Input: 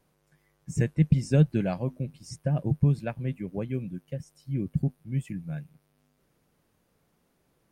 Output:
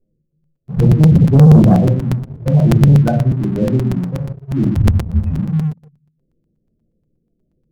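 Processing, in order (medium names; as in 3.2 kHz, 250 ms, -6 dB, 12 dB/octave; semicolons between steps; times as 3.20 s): local Wiener filter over 41 samples; spectral gate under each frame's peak -15 dB strong; 1.35–1.85 s: bass shelf 240 Hz +5 dB; hum notches 50/100/150/200/250/300/350/400 Hz; reverberation RT60 0.45 s, pre-delay 3 ms, DRR -5.5 dB; 4.76–5.39 s: frequency shift -56 Hz; waveshaping leveller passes 2; crackling interface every 0.12 s, samples 256, repeat, from 0.31 s; trim +2.5 dB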